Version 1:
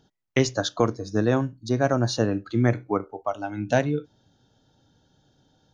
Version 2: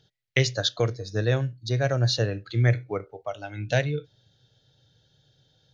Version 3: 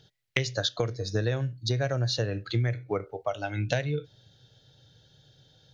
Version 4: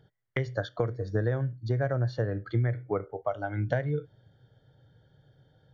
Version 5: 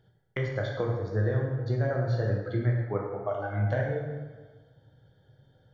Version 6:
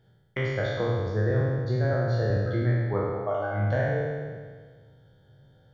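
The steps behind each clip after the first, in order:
ten-band EQ 125 Hz +11 dB, 250 Hz -11 dB, 500 Hz +7 dB, 1000 Hz -9 dB, 2000 Hz +9 dB, 4000 Hz +10 dB; gain -5.5 dB
compressor 12:1, threshold -28 dBFS, peak gain reduction 13.5 dB; gain +4.5 dB
polynomial smoothing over 41 samples
plate-style reverb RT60 1.4 s, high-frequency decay 0.65×, DRR -1.5 dB; gain -3.5 dB
spectral trails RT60 1.63 s

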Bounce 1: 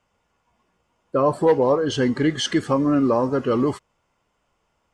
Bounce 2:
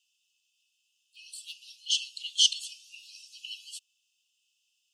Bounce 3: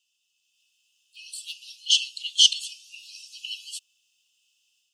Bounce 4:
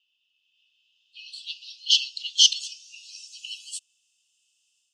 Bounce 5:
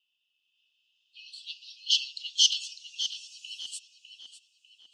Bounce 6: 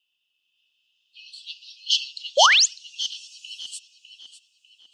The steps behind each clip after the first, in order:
Chebyshev high-pass 2600 Hz, order 10; gain +5 dB
dynamic EQ 2400 Hz, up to +3 dB, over -37 dBFS, Q 0.96; AGC gain up to 6 dB
low-pass sweep 3100 Hz -> 8600 Hz, 0.51–3.84; gain -3.5 dB
tape echo 0.6 s, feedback 57%, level -5 dB, low-pass 2700 Hz; gain -5 dB
painted sound rise, 2.37–2.66, 500–7500 Hz -19 dBFS; reverb, pre-delay 50 ms, DRR 22 dB; gain +3 dB

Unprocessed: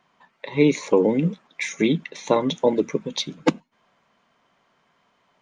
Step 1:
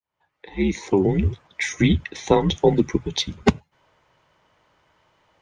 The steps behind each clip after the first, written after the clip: opening faded in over 1.45 s; frequency shift -86 Hz; gain +2.5 dB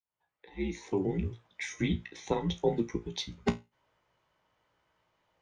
resonator 58 Hz, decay 0.21 s, harmonics all, mix 80%; gain -7.5 dB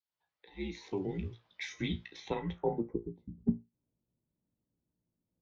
low-pass sweep 4400 Hz -> 240 Hz, 2.2–3.2; gain -5.5 dB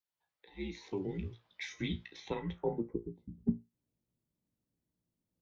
dynamic EQ 720 Hz, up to -5 dB, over -54 dBFS, Q 3.3; gain -1.5 dB

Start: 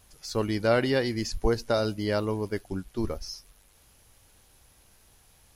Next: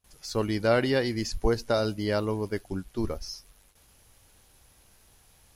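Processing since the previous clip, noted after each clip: gate with hold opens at -49 dBFS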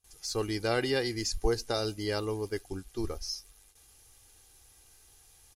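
bell 8000 Hz +9 dB 1.9 oct; comb 2.5 ms, depth 48%; gain -5.5 dB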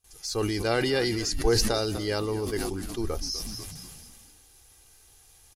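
frequency-shifting echo 0.246 s, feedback 52%, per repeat -63 Hz, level -17 dB; sustainer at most 23 dB/s; gain +2.5 dB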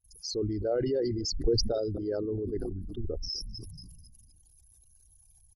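formant sharpening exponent 3; gain -3 dB

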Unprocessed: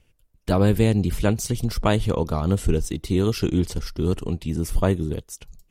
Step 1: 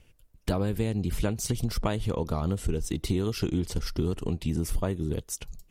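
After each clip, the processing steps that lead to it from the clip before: compressor 6:1, threshold -27 dBFS, peak gain reduction 14 dB; gain +3 dB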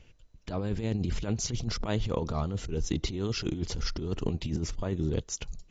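negative-ratio compressor -29 dBFS, ratio -0.5; MP2 128 kbps 16000 Hz

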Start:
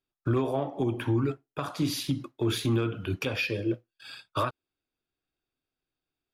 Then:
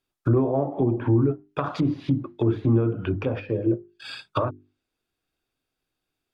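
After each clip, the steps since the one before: treble ducked by the level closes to 740 Hz, closed at -26.5 dBFS; notches 50/100/150/200/250/300/350/400 Hz; gain +7 dB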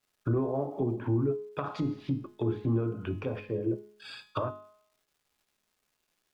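crackle 550/s -55 dBFS; resonator 210 Hz, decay 0.66 s, harmonics all, mix 70%; gain +2 dB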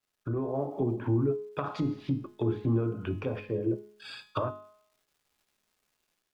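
AGC gain up to 6.5 dB; gain -5.5 dB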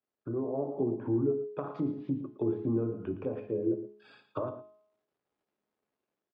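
band-pass 370 Hz, Q 0.79; echo 0.114 s -12.5 dB

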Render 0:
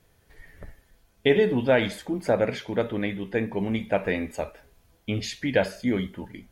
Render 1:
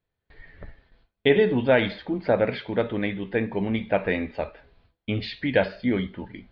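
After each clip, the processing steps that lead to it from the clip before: gate with hold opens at -49 dBFS; elliptic low-pass 4300 Hz, stop band 50 dB; gain +2 dB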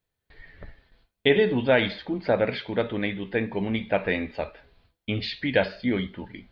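high shelf 3400 Hz +8.5 dB; gain -1.5 dB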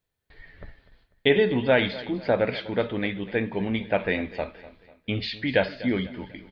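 feedback echo 0.247 s, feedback 43%, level -18 dB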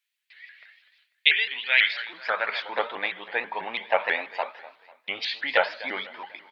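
high-pass sweep 2400 Hz -> 900 Hz, 1.63–2.75; shaped vibrato saw up 6.1 Hz, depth 160 cents; gain +2 dB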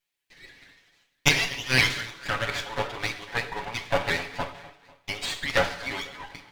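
minimum comb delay 7.1 ms; on a send at -9 dB: reverb, pre-delay 3 ms

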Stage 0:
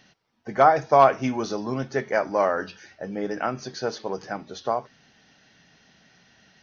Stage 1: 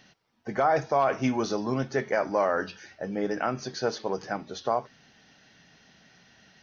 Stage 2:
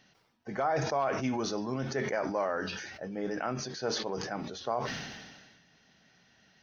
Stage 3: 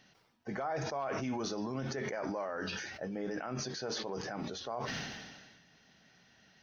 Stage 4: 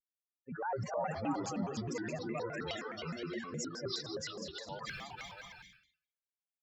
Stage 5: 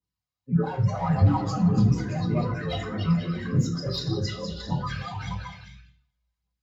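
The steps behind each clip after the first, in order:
limiter -14 dBFS, peak gain reduction 10 dB
sustainer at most 38 dB/s; gain -6.5 dB
limiter -28 dBFS, peak gain reduction 8 dB
per-bin expansion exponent 3; on a send: bouncing-ball echo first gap 0.3 s, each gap 0.65×, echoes 5; on the sum: shaped vibrato square 4.8 Hz, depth 250 cents; gain +3.5 dB
overloaded stage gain 33 dB; phaser 1.7 Hz, delay 1.9 ms, feedback 63%; reverb RT60 0.45 s, pre-delay 3 ms, DRR -12.5 dB; gain -8.5 dB

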